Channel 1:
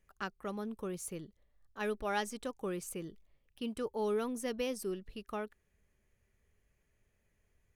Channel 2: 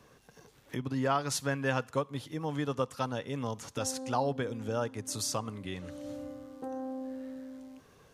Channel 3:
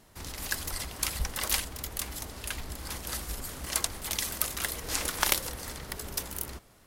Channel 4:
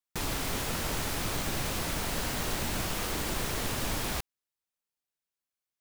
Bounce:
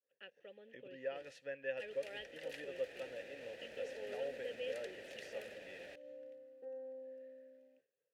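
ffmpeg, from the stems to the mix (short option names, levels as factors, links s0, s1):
-filter_complex "[0:a]acrusher=bits=9:mix=0:aa=0.000001,lowpass=f=3100:t=q:w=5.1,volume=0.596,asplit=2[s0][s1];[1:a]adynamicequalizer=threshold=0.00224:dfrequency=2400:dqfactor=1.3:tfrequency=2400:tqfactor=1.3:attack=5:release=100:ratio=0.375:range=3:mode=boostabove:tftype=bell,volume=0.562[s2];[2:a]adelay=1000,volume=0.531[s3];[3:a]alimiter=level_in=1.26:limit=0.0631:level=0:latency=1:release=88,volume=0.794,adelay=1750,volume=0.794,afade=t=in:st=2.55:d=0.27:silence=0.421697[s4];[s1]apad=whole_len=346906[s5];[s3][s5]sidechaingate=range=0.0224:threshold=0.00158:ratio=16:detection=peak[s6];[s0][s2][s6][s4]amix=inputs=4:normalize=0,agate=range=0.0224:threshold=0.00224:ratio=3:detection=peak,asplit=3[s7][s8][s9];[s7]bandpass=f=530:t=q:w=8,volume=1[s10];[s8]bandpass=f=1840:t=q:w=8,volume=0.501[s11];[s9]bandpass=f=2480:t=q:w=8,volume=0.355[s12];[s10][s11][s12]amix=inputs=3:normalize=0"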